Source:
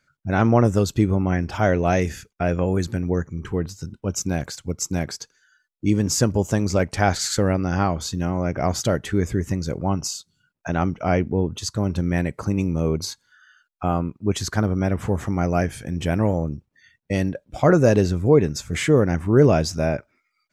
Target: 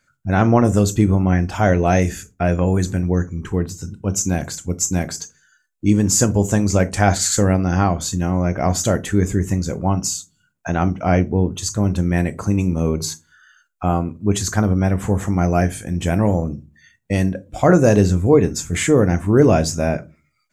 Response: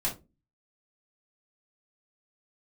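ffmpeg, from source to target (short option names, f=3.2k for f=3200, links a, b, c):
-filter_complex "[0:a]asplit=2[a][b];[b]highshelf=f=5.3k:t=q:w=3:g=9.5[c];[1:a]atrim=start_sample=2205[d];[c][d]afir=irnorm=-1:irlink=0,volume=-14.5dB[e];[a][e]amix=inputs=2:normalize=0,volume=1.5dB"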